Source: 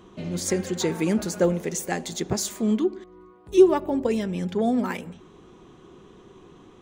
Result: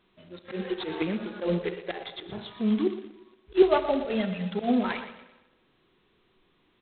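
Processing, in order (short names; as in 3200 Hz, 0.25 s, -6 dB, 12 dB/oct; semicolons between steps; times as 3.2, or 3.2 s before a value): de-hum 56.91 Hz, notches 21; spectral noise reduction 20 dB; 2.44–2.87 dynamic EQ 470 Hz, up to -5 dB, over -37 dBFS, Q 0.91; 3.62–4.61 comb 1.5 ms, depth 75%; auto swell 0.113 s; 1.02–1.46 compressor 3:1, threshold -29 dBFS, peak gain reduction 7.5 dB; feedback echo 0.118 s, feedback 37%, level -12.5 dB; reverb RT60 1.2 s, pre-delay 58 ms, DRR 14 dB; G.726 16 kbps 8000 Hz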